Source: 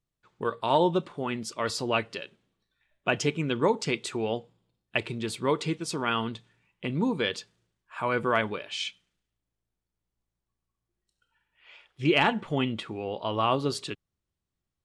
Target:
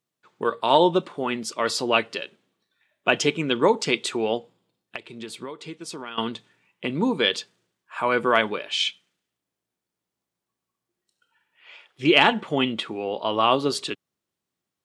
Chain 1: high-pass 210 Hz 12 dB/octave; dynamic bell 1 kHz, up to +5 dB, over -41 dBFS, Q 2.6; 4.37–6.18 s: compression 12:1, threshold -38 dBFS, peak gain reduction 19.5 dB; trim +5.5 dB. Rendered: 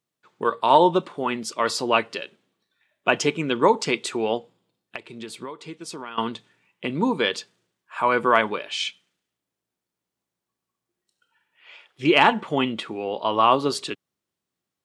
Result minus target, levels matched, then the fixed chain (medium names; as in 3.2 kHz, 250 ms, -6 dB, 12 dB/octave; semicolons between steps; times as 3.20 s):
4 kHz band -3.5 dB
high-pass 210 Hz 12 dB/octave; dynamic bell 3.4 kHz, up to +5 dB, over -41 dBFS, Q 2.6; 4.37–6.18 s: compression 12:1, threshold -38 dBFS, peak gain reduction 18.5 dB; trim +5.5 dB